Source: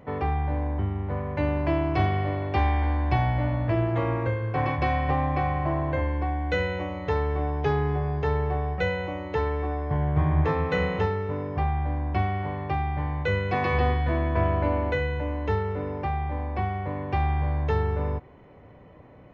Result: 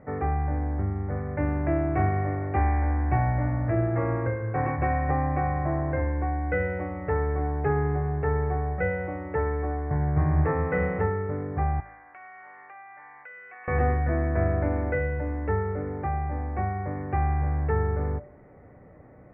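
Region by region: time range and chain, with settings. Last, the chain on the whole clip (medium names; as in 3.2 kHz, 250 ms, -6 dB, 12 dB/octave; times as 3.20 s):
11.80–13.68 s: high-pass 1.4 kHz + compression 4:1, threshold -41 dBFS
whole clip: steep low-pass 2.1 kHz 48 dB/octave; band-stop 1 kHz, Q 6.4; de-hum 53.56 Hz, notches 13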